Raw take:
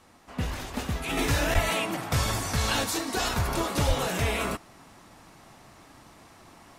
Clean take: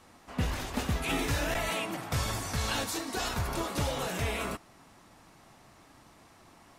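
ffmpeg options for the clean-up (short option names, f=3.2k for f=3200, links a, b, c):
-filter_complex "[0:a]asplit=3[a][b][c];[a]afade=t=out:st=1.54:d=0.02[d];[b]highpass=f=140:w=0.5412,highpass=f=140:w=1.3066,afade=t=in:st=1.54:d=0.02,afade=t=out:st=1.66:d=0.02[e];[c]afade=t=in:st=1.66:d=0.02[f];[d][e][f]amix=inputs=3:normalize=0,asplit=3[g][h][i];[g]afade=t=out:st=3.87:d=0.02[j];[h]highpass=f=140:w=0.5412,highpass=f=140:w=1.3066,afade=t=in:st=3.87:d=0.02,afade=t=out:st=3.99:d=0.02[k];[i]afade=t=in:st=3.99:d=0.02[l];[j][k][l]amix=inputs=3:normalize=0,asetnsamples=n=441:p=0,asendcmd='1.17 volume volume -5dB',volume=0dB"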